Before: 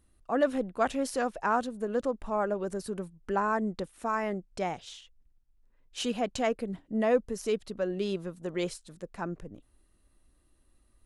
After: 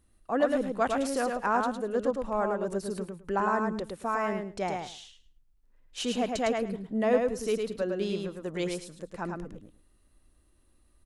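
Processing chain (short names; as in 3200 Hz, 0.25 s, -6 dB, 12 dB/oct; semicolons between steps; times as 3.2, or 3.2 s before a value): feedback echo 0.107 s, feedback 17%, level -4 dB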